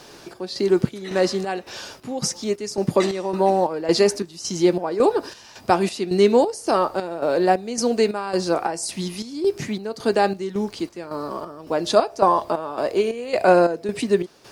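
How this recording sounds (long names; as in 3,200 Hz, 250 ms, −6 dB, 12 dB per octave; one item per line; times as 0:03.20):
a quantiser's noise floor 10 bits, dither none
chopped level 1.8 Hz, depth 65%, duty 60%
MP3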